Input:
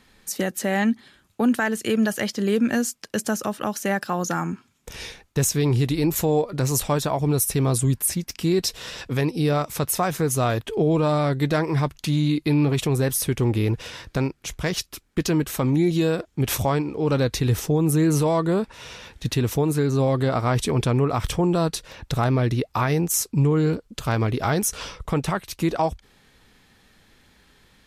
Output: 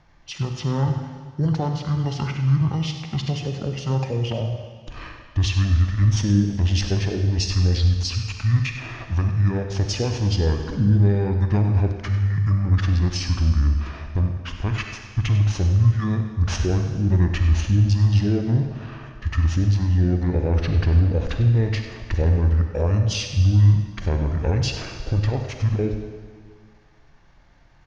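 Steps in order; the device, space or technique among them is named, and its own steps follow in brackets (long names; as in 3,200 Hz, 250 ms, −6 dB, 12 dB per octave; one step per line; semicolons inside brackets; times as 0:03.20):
0:23.15–0:24.04: notch filter 1,300 Hz, Q 5.3
dynamic equaliser 8,300 Hz, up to −5 dB, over −48 dBFS, Q 4.5
monster voice (pitch shifter −7 semitones; formants moved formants −6 semitones; low-shelf EQ 130 Hz +8.5 dB; single-tap delay 98 ms −13 dB; convolution reverb RT60 1.7 s, pre-delay 35 ms, DRR 5 dB)
level −3 dB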